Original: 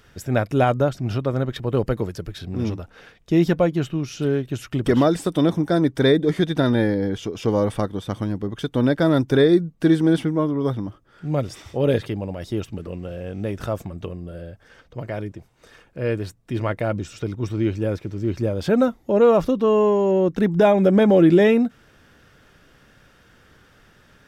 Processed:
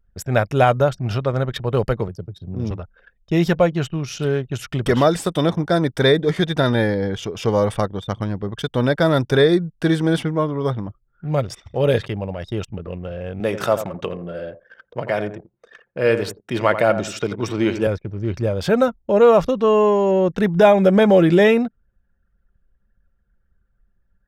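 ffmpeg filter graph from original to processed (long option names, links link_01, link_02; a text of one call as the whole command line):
ffmpeg -i in.wav -filter_complex "[0:a]asettb=1/sr,asplit=3[link_01][link_02][link_03];[link_01]atrim=end=2.084[link_04];[link_02]atrim=start=2.08:end=2.71,asetpts=PTS-STARTPTS,afade=type=in:duration=0.004:curve=qsin,afade=type=out:start_time=0.626:duration=0.004:curve=qsin,highpass=frequency=81:width=0.5412,highpass=frequency=81:width=1.3066,equalizer=frequency=1800:width_type=o:width=2.6:gain=-12.5[link_05];[link_03]atrim=start=2.706[link_06];[link_04][link_05]acrossfade=duration=0.004:curve1=hsin:curve2=qsin[link_07];[link_07][link_06]acrossfade=duration=0.004:curve1=qsin:curve2=hsin,asettb=1/sr,asplit=3[link_08][link_09][link_10];[link_08]atrim=end=13.404[link_11];[link_09]atrim=start=13.4:end=17.87,asetpts=PTS-STARTPTS,afade=type=in:duration=0.004:curve=qsin,afade=type=out:start_time=4.466:duration=0.004:curve=qsin,highpass=200,acontrast=32,asplit=2[link_12][link_13];[link_13]adelay=86,lowpass=frequency=2100:poles=1,volume=-10dB,asplit=2[link_14][link_15];[link_15]adelay=86,lowpass=frequency=2100:poles=1,volume=0.29,asplit=2[link_16][link_17];[link_17]adelay=86,lowpass=frequency=2100:poles=1,volume=0.29[link_18];[link_12][link_14][link_16][link_18]amix=inputs=4:normalize=0,atrim=end_sample=197127[link_19];[link_10]atrim=start=17.866[link_20];[link_11][link_19]acrossfade=duration=0.004:curve1=hsin:curve2=qsin[link_21];[link_21][link_20]acrossfade=duration=0.004:curve1=qsin:curve2=hsin,equalizer=frequency=290:width=1.9:gain=-8.5,anlmdn=0.398,lowshelf=frequency=190:gain=-3,volume=5dB" out.wav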